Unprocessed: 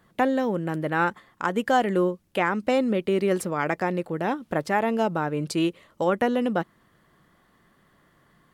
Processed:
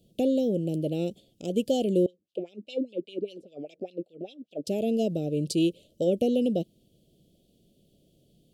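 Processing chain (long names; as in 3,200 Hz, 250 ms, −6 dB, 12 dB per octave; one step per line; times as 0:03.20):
inverse Chebyshev band-stop filter 880–2,000 Hz, stop band 40 dB
0:02.06–0:04.67: LFO wah 5 Hz 270–3,900 Hz, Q 3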